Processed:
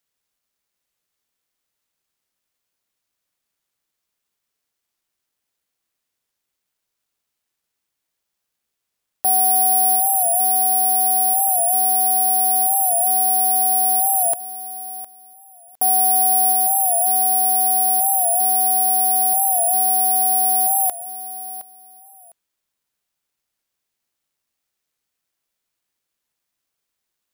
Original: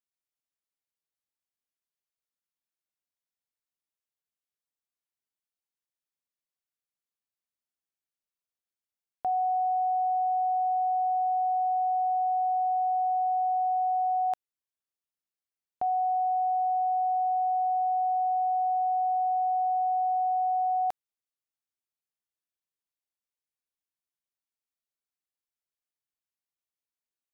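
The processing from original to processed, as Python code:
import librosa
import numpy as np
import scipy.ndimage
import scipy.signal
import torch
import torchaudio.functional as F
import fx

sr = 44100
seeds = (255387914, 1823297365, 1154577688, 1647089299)

p1 = fx.peak_eq(x, sr, hz=830.0, db=-4.5, octaves=0.53)
p2 = p1 + fx.echo_feedback(p1, sr, ms=708, feedback_pct=18, wet_db=-14.5, dry=0)
p3 = (np.kron(p2[::4], np.eye(4)[0]) * 4)[:len(p2)]
p4 = fx.record_warp(p3, sr, rpm=45.0, depth_cents=100.0)
y = F.gain(torch.from_numpy(p4), 8.0).numpy()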